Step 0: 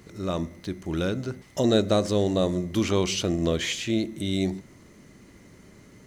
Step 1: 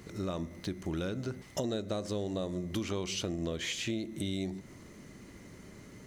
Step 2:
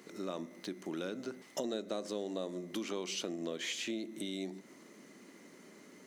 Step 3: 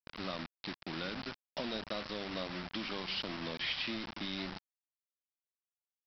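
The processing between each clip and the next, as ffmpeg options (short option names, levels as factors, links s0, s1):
-af "acompressor=threshold=0.0251:ratio=6"
-af "highpass=f=220:w=0.5412,highpass=f=220:w=1.3066,volume=0.75"
-af "lowshelf=f=130:g=6,aresample=11025,acrusher=bits=6:mix=0:aa=0.000001,aresample=44100,equalizer=f=390:t=o:w=1.3:g=-10.5,volume=1.41"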